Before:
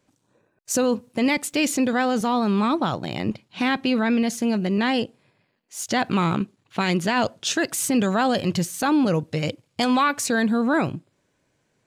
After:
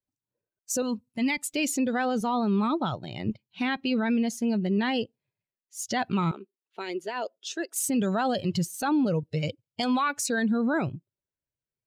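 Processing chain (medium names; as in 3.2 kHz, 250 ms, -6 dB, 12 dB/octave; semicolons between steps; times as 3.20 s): expander on every frequency bin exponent 1.5; 0.82–1.44 s: peaking EQ 490 Hz -13.5 dB 0.68 oct; 6.31–7.76 s: ladder high-pass 330 Hz, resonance 50%; peak limiter -18.5 dBFS, peak gain reduction 5.5 dB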